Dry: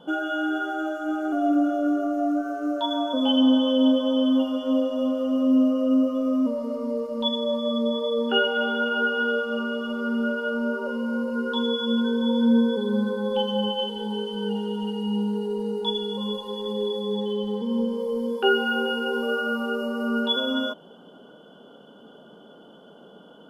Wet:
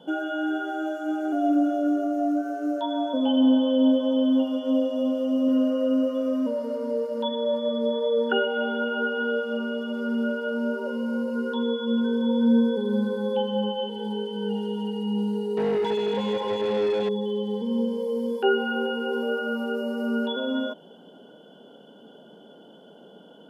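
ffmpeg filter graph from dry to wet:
-filter_complex "[0:a]asettb=1/sr,asplit=3[s0][s1][s2];[s0]atrim=end=5.484[s3];[s1]atrim=start=5.48:end=8.33,asetpts=PTS-STARTPTS,afade=t=in:d=0.004:c=qsin,afade=t=out:st=2.846:d=0.004:c=qsin,equalizer=f=1500:w=2:g=10.5,bandreject=f=2400:w=27,aecho=1:1:2.1:0.32,atrim=end_sample=125685[s4];[s2]atrim=start=8.326[s5];[s3][s4]acrossfade=d=0.004:c1=hsin:c2=qsin[s6];[s6][s5]acrossfade=d=0.004:c1=qsin:c2=hsin,asettb=1/sr,asplit=3[s7][s8][s9];[s7]atrim=end=15.574[s10];[s8]atrim=start=15.57:end=17.09,asetpts=PTS-STARTPTS,afade=t=in:d=0.004:c=qsin,afade=t=out:st=1.516:d=0.004:c=qsin,acrossover=split=2500[s11][s12];[s12]acompressor=threshold=0.0112:ratio=4:attack=1:release=60[s13];[s11][s13]amix=inputs=2:normalize=0,asplit=2[s14][s15];[s15]highpass=f=720:p=1,volume=17.8,asoftclip=type=tanh:threshold=0.15[s16];[s14][s16]amix=inputs=2:normalize=0,lowpass=f=2700:p=1,volume=0.501[s17];[s9]atrim=start=17.086[s18];[s10][s17]acrossfade=d=0.004:c1=hsin:c2=qsin[s19];[s19][s18]acrossfade=d=0.004:c1=qsin:c2=hsin,highpass=130,acrossover=split=2500[s20][s21];[s21]acompressor=threshold=0.00398:ratio=4:attack=1:release=60[s22];[s20][s22]amix=inputs=2:normalize=0,equalizer=f=1200:t=o:w=0.32:g=-12.5"

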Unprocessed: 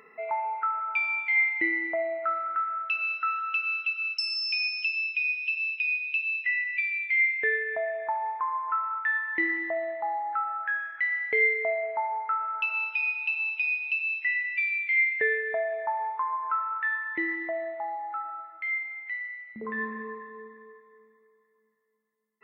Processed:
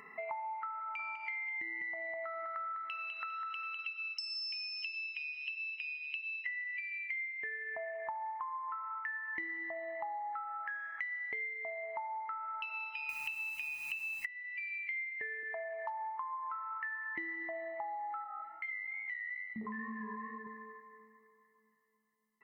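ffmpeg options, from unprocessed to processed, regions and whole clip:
-filter_complex "[0:a]asettb=1/sr,asplit=3[s0][s1][s2];[s0]atrim=end=0.794[s3];[s1]atrim=start=0.79:end=3.79,asetpts=PTS-STARTPTS,afade=t=in:d=0.004:c=qsin,afade=t=out:st=2.996:d=0.004:c=qsin,acompressor=threshold=0.0316:ratio=4:attack=3.2:release=140:knee=1:detection=peak,bandreject=f=5100:w=19,aecho=1:1:202|404|606:0.708|0.127|0.0229,atrim=end_sample=132300[s4];[s2]atrim=start=3.786[s5];[s3][s4]acrossfade=d=0.004:c1=hsin:c2=qsin[s6];[s6][s5]acrossfade=d=0.004:c1=qsin:c2=hsin,asettb=1/sr,asplit=3[s7][s8][s9];[s7]atrim=end=13.094[s10];[s8]atrim=start=13.09:end=14.26,asetpts=PTS-STARTPTS,afade=t=in:d=0.004:c=qsin,afade=t=out:st=1.166:d=0.004:c=qsin,highpass=f=330:w=0.5412,highpass=f=330:w=1.3066,equalizer=f=1600:t=o:w=2.7:g=15,acrusher=bits=7:dc=4:mix=0:aa=0.000001[s11];[s9]atrim=start=14.256[s12];[s10][s11]acrossfade=d=0.004:c1=hsin:c2=qsin[s13];[s13][s12]acrossfade=d=0.004:c1=qsin:c2=hsin,asettb=1/sr,asplit=3[s14][s15][s16];[s14]atrim=end=15.434[s17];[s15]atrim=start=15.43:end=16.02,asetpts=PTS-STARTPTS,afade=t=in:d=0.004:c=qsin,afade=t=out:st=0.586:d=0.004:c=qsin,asoftclip=type=hard:threshold=0.0841,highpass=460,lowpass=4100[s18];[s16]atrim=start=16.016[s19];[s17][s18]acrossfade=d=0.004:c1=hsin:c2=qsin[s20];[s20][s19]acrossfade=d=0.004:c1=qsin:c2=hsin,asettb=1/sr,asplit=3[s21][s22][s23];[s21]atrim=end=18.244[s24];[s22]atrim=start=18.24:end=20.47,asetpts=PTS-STARTPTS,afade=t=in:d=0.004:c=qsin,afade=t=out:st=2.226:d=0.004:c=qsin,equalizer=f=210:w=5:g=6,flanger=delay=16.5:depth=7.3:speed=2.3,acompressor=threshold=0.0112:ratio=2:attack=3.2:release=140:knee=1:detection=peak[s25];[s23]atrim=start=20.466[s26];[s24][s25]acrossfade=d=0.004:c1=hsin:c2=qsin[s27];[s27][s26]acrossfade=d=0.004:c1=qsin:c2=hsin,equalizer=f=3500:t=o:w=0.21:g=-8,aecho=1:1:1:0.62,acompressor=threshold=0.0126:ratio=12"

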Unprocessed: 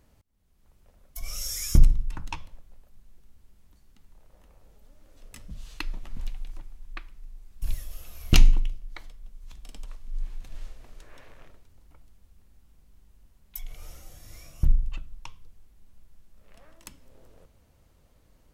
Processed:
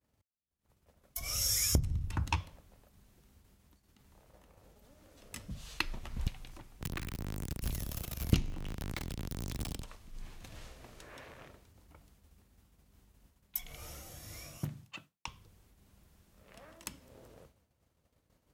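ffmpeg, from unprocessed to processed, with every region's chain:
-filter_complex "[0:a]asettb=1/sr,asplit=3[s0][s1][s2];[s0]atrim=end=1.354[s3];[s1]atrim=start=1.35:end=2.41,asetpts=PTS-STARTPTS,afade=t=in:d=0.004:c=qsin,afade=t=out:st=1.056:d=0.004:c=qsin,equalizer=f=84:t=o:w=0.87:g=13.5,acompressor=threshold=0.0891:ratio=12:attack=3.2:release=140:knee=1:detection=peak[s4];[s2]atrim=start=2.406[s5];[s3][s4]acrossfade=d=0.004:c1=hsin:c2=qsin[s6];[s6][s5]acrossfade=d=0.004:c1=qsin:c2=hsin,asettb=1/sr,asplit=3[s7][s8][s9];[s7]atrim=end=5.594[s10];[s8]atrim=start=5.59:end=6.27,asetpts=PTS-STARTPTS,afade=t=in:d=0.004:c=qsin,afade=t=out:st=0.676:d=0.004:c=qsin,bandreject=f=290:w=7.8,asubboost=boost=10:cutoff=89[s11];[s9]atrim=start=6.266[s12];[s10][s11]acrossfade=d=0.004:c1=hsin:c2=qsin[s13];[s13][s12]acrossfade=d=0.004:c1=qsin:c2=hsin,asettb=1/sr,asplit=3[s14][s15][s16];[s14]atrim=end=6.814[s17];[s15]atrim=start=6.81:end=9.82,asetpts=PTS-STARTPTS,afade=t=in:d=0.004:c=qsin,afade=t=out:st=3.006:d=0.004:c=qsin,aeval=exprs='val(0)+0.5*0.0422*sgn(val(0))':c=same,acrossover=split=360|1100[s18][s19][s20];[s18]acompressor=threshold=0.0891:ratio=4[s21];[s19]acompressor=threshold=0.00158:ratio=4[s22];[s20]acompressor=threshold=0.00631:ratio=4[s23];[s21][s22][s23]amix=inputs=3:normalize=0[s24];[s16]atrim=start=9.816[s25];[s17][s24]acrossfade=d=0.004:c1=hsin:c2=qsin[s26];[s26][s25]acrossfade=d=0.004:c1=qsin:c2=hsin,asettb=1/sr,asplit=3[s27][s28][s29];[s27]atrim=end=14.574[s30];[s28]atrim=start=14.57:end=15.28,asetpts=PTS-STARTPTS,afade=t=in:d=0.004:c=qsin,afade=t=out:st=0.706:d=0.004:c=qsin,highpass=f=120:w=0.5412,highpass=f=120:w=1.3066,lowshelf=f=450:g=-5.5[s31];[s29]atrim=start=15.276[s32];[s30][s31]acrossfade=d=0.004:c1=hsin:c2=qsin[s33];[s33][s32]acrossfade=d=0.004:c1=qsin:c2=hsin,agate=range=0.0224:threshold=0.00316:ratio=3:detection=peak,highpass=71,volume=1.33"

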